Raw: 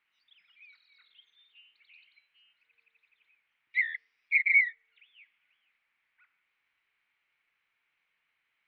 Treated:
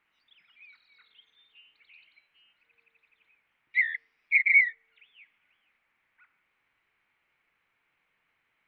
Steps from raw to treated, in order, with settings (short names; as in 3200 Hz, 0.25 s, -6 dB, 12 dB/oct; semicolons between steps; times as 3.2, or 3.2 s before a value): tilt shelf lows +6.5 dB, about 1500 Hz; gain +5 dB